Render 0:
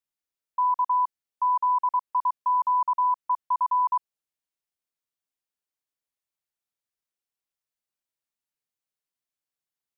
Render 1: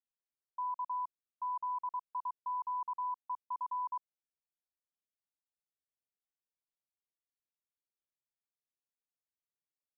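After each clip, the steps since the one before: Bessel low-pass 760 Hz, order 8; gain -8.5 dB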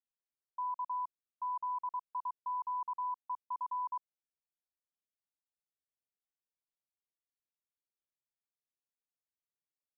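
nothing audible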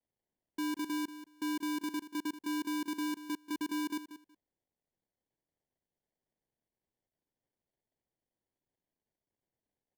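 sample-and-hold 34×; feedback echo 0.185 s, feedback 16%, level -13 dB; gain +2 dB

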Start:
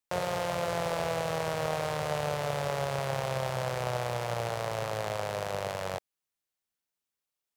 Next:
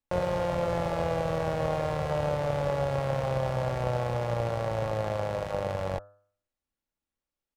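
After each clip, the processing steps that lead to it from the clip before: tilt -3 dB/oct; comb 3.6 ms, depth 38%; de-hum 101.2 Hz, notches 17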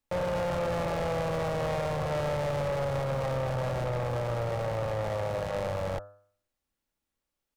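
soft clip -31 dBFS, distortion -8 dB; gain +4.5 dB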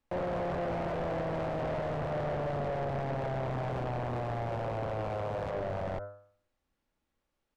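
LPF 2100 Hz 6 dB/oct; limiter -36 dBFS, peak gain reduction 9.5 dB; Doppler distortion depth 0.93 ms; gain +6.5 dB

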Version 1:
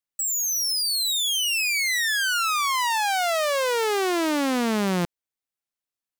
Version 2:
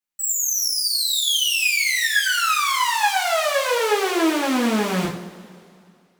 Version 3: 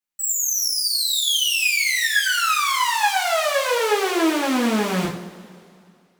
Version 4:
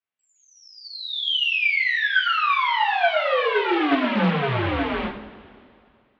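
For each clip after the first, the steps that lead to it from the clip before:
two-slope reverb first 0.47 s, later 2.4 s, from -18 dB, DRR -6.5 dB; gain -4 dB
nothing audible
mistuned SSB -140 Hz 280–3500 Hz; Doppler distortion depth 0.22 ms

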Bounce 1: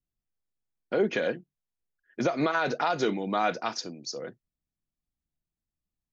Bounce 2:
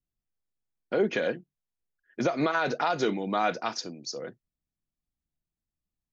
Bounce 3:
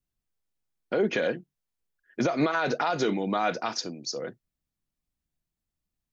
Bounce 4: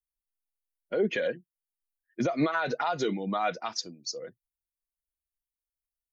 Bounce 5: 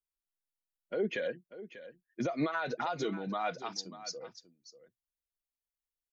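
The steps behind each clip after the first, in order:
nothing audible
limiter -19 dBFS, peak gain reduction 4.5 dB; gain +3 dB
per-bin expansion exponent 1.5
echo 0.591 s -14.5 dB; gain -5.5 dB

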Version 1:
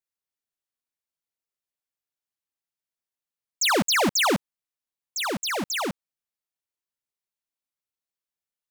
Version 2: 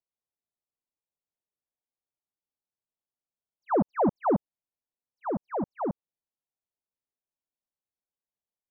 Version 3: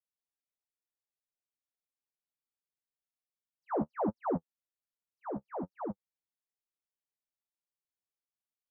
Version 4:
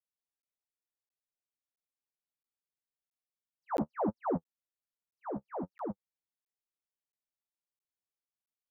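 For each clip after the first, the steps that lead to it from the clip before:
inverse Chebyshev low-pass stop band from 3200 Hz, stop band 60 dB
flange 1.2 Hz, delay 8.3 ms, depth 6.7 ms, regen +22%; gain -4.5 dB
crackling interface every 0.67 s, samples 512, zero, from 0.42

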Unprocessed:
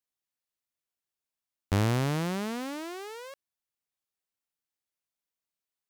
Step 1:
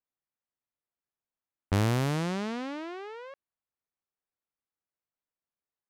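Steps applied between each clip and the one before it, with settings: low-pass opened by the level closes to 1700 Hz, open at -24 dBFS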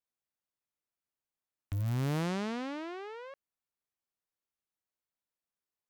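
wavefolder -25 dBFS; gain -2 dB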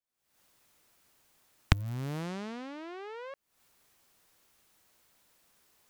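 recorder AGC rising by 76 dB/s; gain -4.5 dB

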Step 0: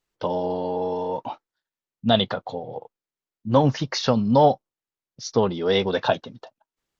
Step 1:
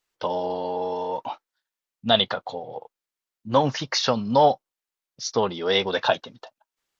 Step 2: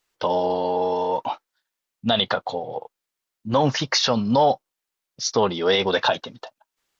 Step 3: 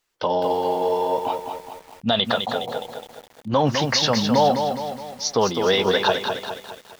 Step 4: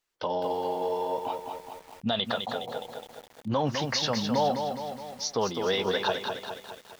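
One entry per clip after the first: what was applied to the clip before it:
low shelf 470 Hz -11.5 dB; gain +3.5 dB
limiter -14 dBFS, peak gain reduction 9 dB; gain +5 dB
lo-fi delay 0.208 s, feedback 55%, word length 7-bit, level -6 dB
recorder AGC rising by 6.5 dB/s; gain -8 dB

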